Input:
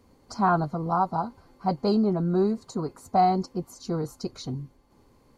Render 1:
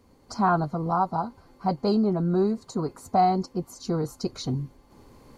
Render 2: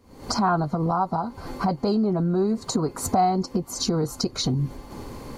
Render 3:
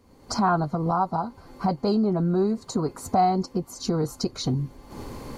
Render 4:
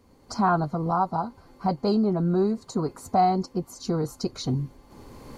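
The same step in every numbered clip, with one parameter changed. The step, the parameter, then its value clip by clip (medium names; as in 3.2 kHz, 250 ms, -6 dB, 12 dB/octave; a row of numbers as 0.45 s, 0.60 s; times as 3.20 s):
recorder AGC, rising by: 5.2 dB/s, 83 dB/s, 33 dB/s, 13 dB/s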